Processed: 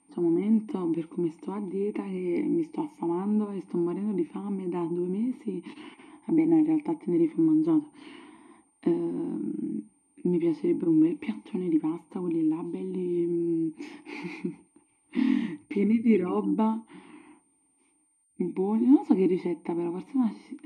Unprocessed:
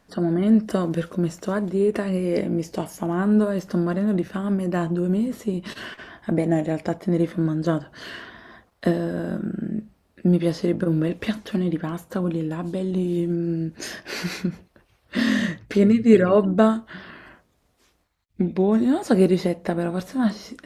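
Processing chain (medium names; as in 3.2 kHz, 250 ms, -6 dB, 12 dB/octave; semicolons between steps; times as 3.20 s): whistle 8.9 kHz -39 dBFS; vowel filter u; trim +6.5 dB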